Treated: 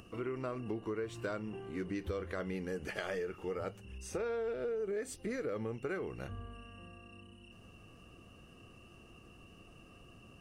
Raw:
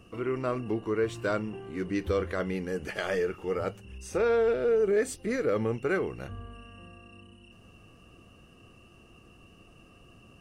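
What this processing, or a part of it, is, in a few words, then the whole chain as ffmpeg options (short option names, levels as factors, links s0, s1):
upward and downward compression: -af "acompressor=mode=upward:threshold=0.00398:ratio=2.5,acompressor=threshold=0.0282:ratio=6,volume=0.668"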